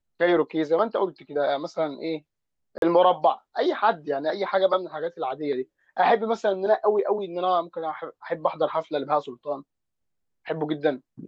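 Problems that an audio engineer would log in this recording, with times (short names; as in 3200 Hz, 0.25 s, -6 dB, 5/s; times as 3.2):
2.78–2.82 gap 42 ms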